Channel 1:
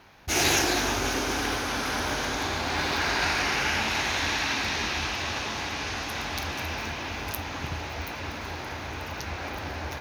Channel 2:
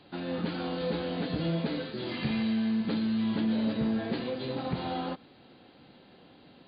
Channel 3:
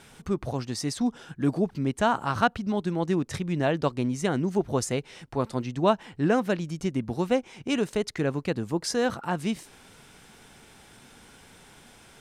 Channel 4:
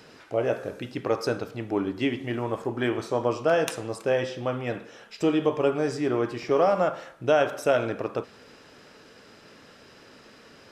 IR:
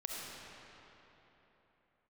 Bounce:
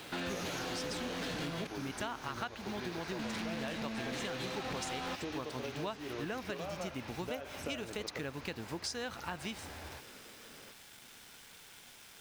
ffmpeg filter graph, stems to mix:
-filter_complex "[0:a]volume=0.2[s0];[1:a]equalizer=f=2100:w=0.41:g=11.5,asoftclip=type=hard:threshold=0.0251,volume=1.06,asplit=3[s1][s2][s3];[s1]atrim=end=1.67,asetpts=PTS-STARTPTS,afade=t=out:st=1.666:d=0.004:c=hsin[s4];[s2]atrim=start=1.67:end=3.19,asetpts=PTS-STARTPTS,volume=0[s5];[s3]atrim=start=3.19,asetpts=PTS-STARTPTS,afade=t=in:d=0.004:c=hsin[s6];[s4][s5][s6]concat=n=3:v=0:a=1[s7];[2:a]equalizer=f=3500:w=0.35:g=12,acrusher=bits=6:mix=0:aa=0.000001,volume=0.266[s8];[3:a]acompressor=threshold=0.0126:ratio=2,volume=0.531[s9];[s0][s7][s8][s9]amix=inputs=4:normalize=0,acompressor=threshold=0.0158:ratio=6"

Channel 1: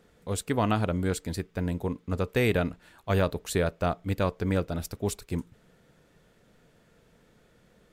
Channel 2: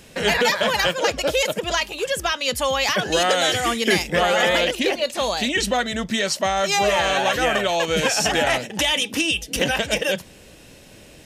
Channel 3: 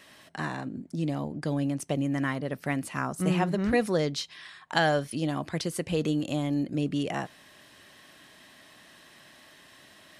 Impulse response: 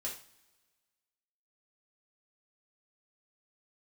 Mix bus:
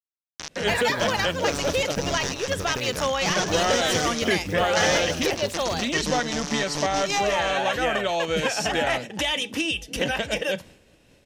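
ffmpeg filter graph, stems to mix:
-filter_complex "[0:a]bandreject=f=93.49:t=h:w=4,bandreject=f=186.98:t=h:w=4,bandreject=f=280.47:t=h:w=4,bandreject=f=373.96:t=h:w=4,bandreject=f=467.45:t=h:w=4,bandreject=f=560.94:t=h:w=4,acompressor=threshold=0.0251:ratio=6,acrusher=bits=7:mix=0:aa=0.000001,adelay=400,volume=1.26[s0];[1:a]agate=range=0.0224:threshold=0.0112:ratio=3:detection=peak,highshelf=f=5900:g=-8,adelay=400,volume=0.631,asplit=2[s1][s2];[s2]volume=0.119[s3];[2:a]acrusher=bits=3:mix=0:aa=0.000001,lowpass=f=5900:t=q:w=6,volume=0.531,asplit=2[s4][s5];[s5]volume=0.501[s6];[3:a]atrim=start_sample=2205[s7];[s3][s7]afir=irnorm=-1:irlink=0[s8];[s6]aecho=0:1:160|320|480|640|800|960:1|0.41|0.168|0.0689|0.0283|0.0116[s9];[s0][s1][s4][s8][s9]amix=inputs=5:normalize=0"

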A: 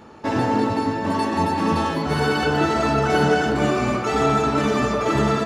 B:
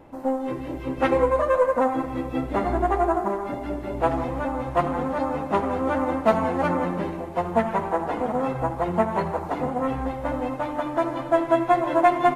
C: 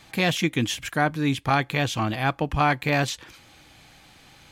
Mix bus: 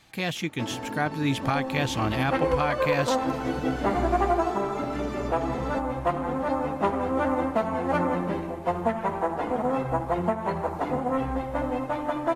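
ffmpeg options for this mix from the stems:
-filter_complex "[0:a]acompressor=threshold=0.0562:ratio=3,adelay=350,volume=0.376[s0];[1:a]adelay=1300,volume=0.891[s1];[2:a]afade=t=in:st=0.85:d=0.57:silence=0.473151[s2];[s0][s1][s2]amix=inputs=3:normalize=0,alimiter=limit=0.224:level=0:latency=1:release=374"

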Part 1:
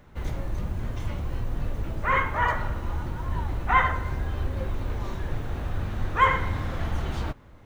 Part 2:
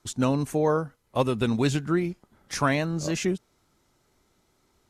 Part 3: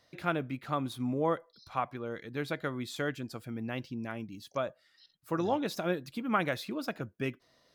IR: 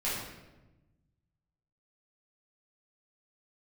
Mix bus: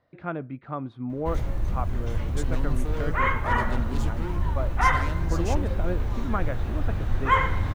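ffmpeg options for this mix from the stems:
-filter_complex "[0:a]adelay=1100,volume=0.891[s0];[1:a]asoftclip=type=hard:threshold=0.0422,adelay=2300,volume=0.473[s1];[2:a]lowpass=1500,volume=1[s2];[s0][s1][s2]amix=inputs=3:normalize=0,lowshelf=f=96:g=6"

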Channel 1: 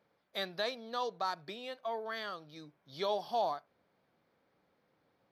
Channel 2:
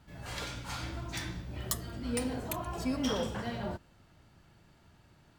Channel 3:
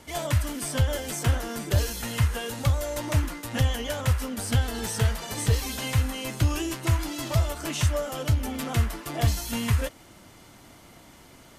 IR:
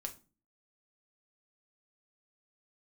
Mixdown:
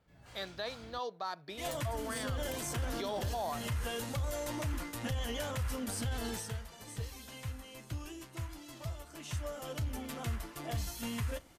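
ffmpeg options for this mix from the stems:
-filter_complex "[0:a]volume=0.668,asplit=2[s0][s1];[1:a]volume=0.2,asplit=3[s2][s3][s4];[s2]atrim=end=0.99,asetpts=PTS-STARTPTS,afade=t=out:st=0.986:d=0.004:c=hsin[s5];[s3]atrim=start=0.99:end=1.71,asetpts=PTS-STARTPTS,volume=0[s6];[s4]atrim=start=1.71,asetpts=PTS-STARTPTS,afade=t=in:d=0.004:c=hsin[s7];[s5][s6][s7]concat=n=3:v=0:a=1[s8];[2:a]adelay=1500,volume=0.708,afade=t=out:st=6.26:d=0.27:silence=0.251189,afade=t=in:st=9.18:d=0.52:silence=0.421697,asplit=2[s9][s10];[s10]volume=0.376[s11];[s1]apad=whole_len=576972[s12];[s9][s12]sidechaincompress=threshold=0.00562:ratio=8:attack=16:release=208[s13];[3:a]atrim=start_sample=2205[s14];[s11][s14]afir=irnorm=-1:irlink=0[s15];[s0][s8][s13][s15]amix=inputs=4:normalize=0,dynaudnorm=f=140:g=17:m=1.5,alimiter=level_in=1.58:limit=0.0631:level=0:latency=1:release=25,volume=0.631"

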